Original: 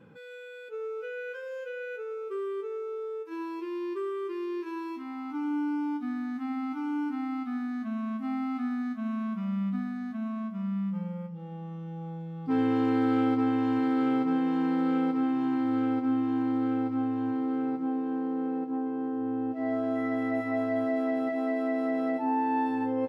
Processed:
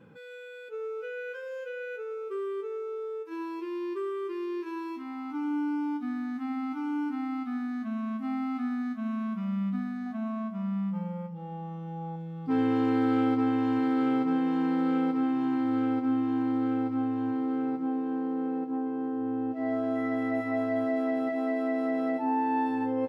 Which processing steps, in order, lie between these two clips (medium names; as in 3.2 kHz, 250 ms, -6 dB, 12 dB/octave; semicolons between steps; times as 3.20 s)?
10.06–12.16 s: peaking EQ 780 Hz +8 dB 0.72 oct